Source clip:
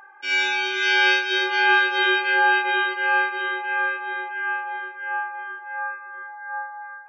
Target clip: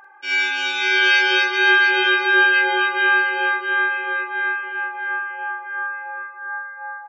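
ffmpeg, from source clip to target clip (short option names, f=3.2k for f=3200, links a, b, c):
-af "aecho=1:1:43.73|274.1:0.447|0.891"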